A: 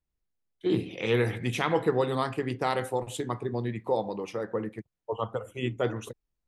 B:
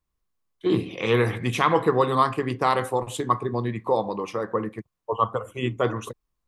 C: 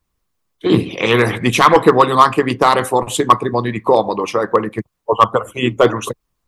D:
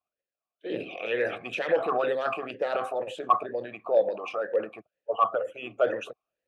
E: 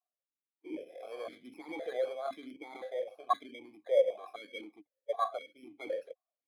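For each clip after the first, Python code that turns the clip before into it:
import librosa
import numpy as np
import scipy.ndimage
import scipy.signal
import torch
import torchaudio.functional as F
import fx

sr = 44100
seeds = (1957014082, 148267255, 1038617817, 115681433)

y1 = fx.peak_eq(x, sr, hz=1100.0, db=12.5, octaves=0.27)
y1 = y1 * 10.0 ** (4.0 / 20.0)
y2 = fx.hpss(y1, sr, part='percussive', gain_db=9)
y2 = np.clip(10.0 ** (5.5 / 20.0) * y2, -1.0, 1.0) / 10.0 ** (5.5 / 20.0)
y2 = y2 * 10.0 ** (4.5 / 20.0)
y3 = fx.transient(y2, sr, attack_db=-2, sustain_db=8)
y3 = fx.vowel_sweep(y3, sr, vowels='a-e', hz=2.1)
y3 = y3 * 10.0 ** (-3.5 / 20.0)
y4 = fx.bit_reversed(y3, sr, seeds[0], block=16)
y4 = fx.vowel_held(y4, sr, hz=3.9)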